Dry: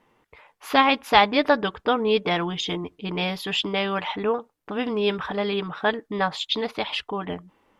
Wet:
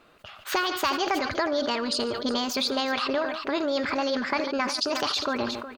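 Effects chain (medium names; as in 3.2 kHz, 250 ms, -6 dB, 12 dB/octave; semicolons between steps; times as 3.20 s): compression 6:1, threshold -30 dBFS, peak gain reduction 18 dB; on a send: multi-tap echo 112/196/491 ms -19/-18.5/-15 dB; on the sum: speed mistake 33 rpm record played at 45 rpm; decay stretcher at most 49 dB/s; trim +5.5 dB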